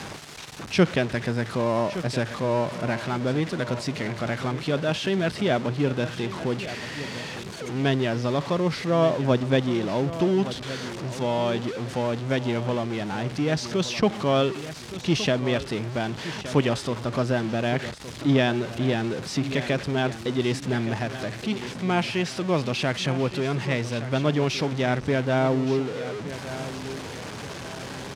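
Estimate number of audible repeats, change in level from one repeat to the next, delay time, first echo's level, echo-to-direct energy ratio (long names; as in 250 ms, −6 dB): 2, −8.5 dB, 1,168 ms, −13.0 dB, −12.5 dB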